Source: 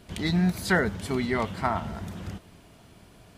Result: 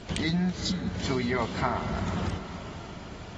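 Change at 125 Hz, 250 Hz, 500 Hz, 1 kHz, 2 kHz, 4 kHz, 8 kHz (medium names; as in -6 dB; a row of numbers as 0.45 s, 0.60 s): -0.5 dB, -1.5 dB, -2.5 dB, -1.5 dB, -5.5 dB, +2.5 dB, +0.5 dB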